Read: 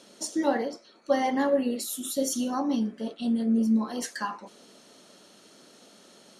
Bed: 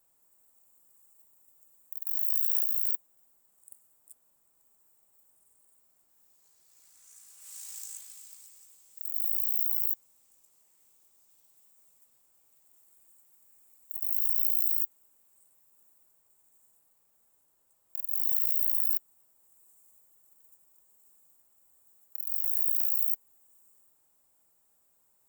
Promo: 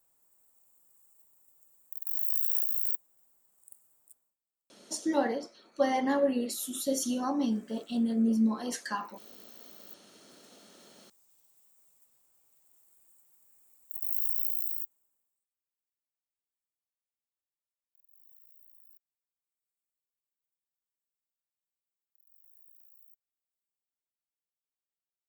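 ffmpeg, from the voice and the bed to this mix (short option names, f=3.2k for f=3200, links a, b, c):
-filter_complex "[0:a]adelay=4700,volume=-2.5dB[a];[1:a]volume=21dB,afade=t=out:st=4.01:d=0.35:silence=0.0707946,afade=t=in:st=9.88:d=0.51:silence=0.0749894,afade=t=out:st=14.18:d=1.28:silence=0.0334965[b];[a][b]amix=inputs=2:normalize=0"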